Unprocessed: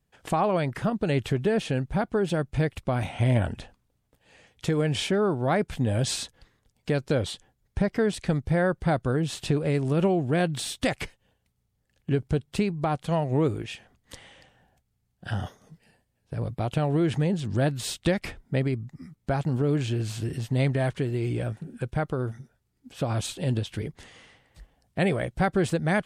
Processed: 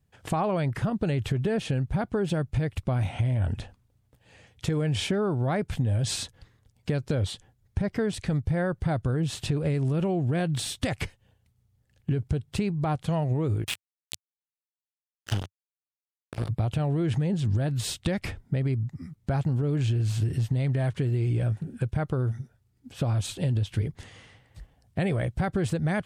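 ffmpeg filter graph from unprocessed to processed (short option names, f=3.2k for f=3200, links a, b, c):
-filter_complex "[0:a]asettb=1/sr,asplit=3[a][b][c];[a]atrim=end=13.644[d];[b]atrim=start=13.64:end=16.49,asetpts=PTS-STARTPTS,afade=t=in:d=0.004:c=qsin,afade=t=out:st=2.846:d=0.004:c=qsin,highshelf=f=1.9k:t=q:w=1.5:g=7.5,acrusher=bits=3:mix=0:aa=0.5[e];[c]atrim=start=16.486[f];[d][e]acrossfade=d=0.004:c1=hsin:c2=qsin[g];[g][f]acrossfade=d=0.004:c1=qsin:c2=hsin,equalizer=f=97:w=1.2:g=11,alimiter=limit=-14.5dB:level=0:latency=1,acompressor=threshold=-22dB:ratio=6"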